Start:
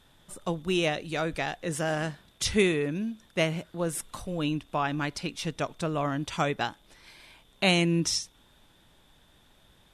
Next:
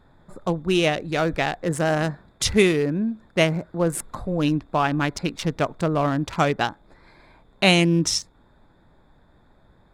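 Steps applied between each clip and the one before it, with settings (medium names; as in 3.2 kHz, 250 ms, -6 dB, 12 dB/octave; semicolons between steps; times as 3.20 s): local Wiener filter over 15 samples; in parallel at -3 dB: gain riding within 3 dB 0.5 s; on the sum: trim +2.5 dB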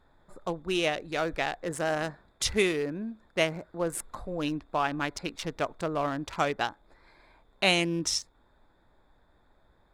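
peaking EQ 150 Hz -8.5 dB 1.8 oct; trim -5.5 dB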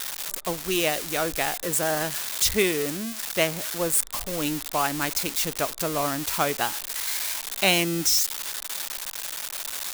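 zero-crossing glitches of -19 dBFS; trim +2.5 dB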